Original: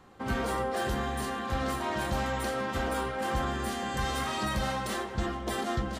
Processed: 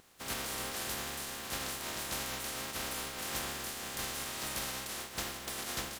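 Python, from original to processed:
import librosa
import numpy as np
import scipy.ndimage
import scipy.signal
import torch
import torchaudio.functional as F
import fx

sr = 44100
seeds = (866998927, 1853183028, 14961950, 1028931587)

y = fx.spec_flatten(x, sr, power=0.26)
y = fx.vibrato(y, sr, rate_hz=4.6, depth_cents=41.0)
y = y * 10.0 ** (-7.5 / 20.0)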